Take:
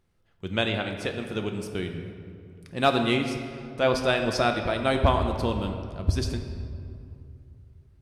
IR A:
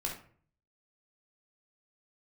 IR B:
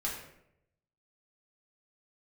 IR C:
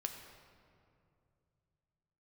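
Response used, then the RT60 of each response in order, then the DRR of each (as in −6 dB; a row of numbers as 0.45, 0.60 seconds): C; 0.50, 0.75, 2.5 seconds; −1.0, −5.5, 4.0 decibels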